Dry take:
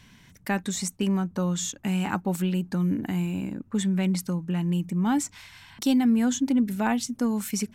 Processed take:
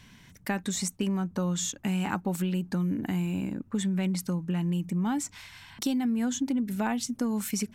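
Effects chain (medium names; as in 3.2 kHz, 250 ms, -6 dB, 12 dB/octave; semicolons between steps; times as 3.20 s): compression, threshold -25 dBFS, peak gain reduction 7 dB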